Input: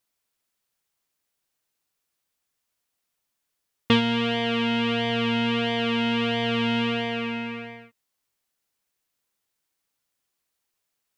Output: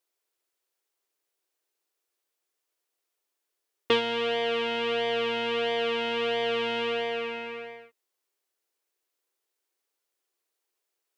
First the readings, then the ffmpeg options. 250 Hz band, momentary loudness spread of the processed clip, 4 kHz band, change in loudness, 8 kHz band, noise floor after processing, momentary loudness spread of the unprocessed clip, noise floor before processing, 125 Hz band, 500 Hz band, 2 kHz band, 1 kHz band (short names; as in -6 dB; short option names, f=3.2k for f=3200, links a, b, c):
-14.0 dB, 8 LU, -3.5 dB, -3.5 dB, n/a, -83 dBFS, 8 LU, -80 dBFS, -19.0 dB, +2.0 dB, -3.5 dB, -2.0 dB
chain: -af "lowshelf=f=260:t=q:w=3:g=-12.5,volume=-3.5dB"